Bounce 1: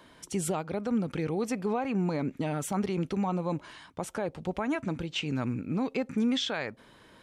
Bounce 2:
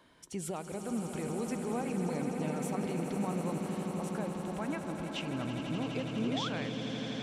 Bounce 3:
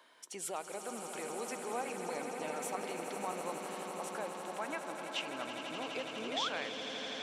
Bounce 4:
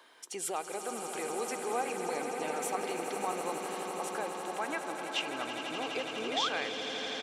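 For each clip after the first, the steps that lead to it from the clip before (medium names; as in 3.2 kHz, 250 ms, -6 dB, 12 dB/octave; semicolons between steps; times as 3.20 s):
echo with a slow build-up 83 ms, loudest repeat 8, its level -10.5 dB; painted sound rise, 6.22–6.49 s, 270–1600 Hz -32 dBFS; trim -7.5 dB
high-pass 560 Hz 12 dB/octave; trim +2 dB
comb 2.5 ms, depth 31%; trim +4 dB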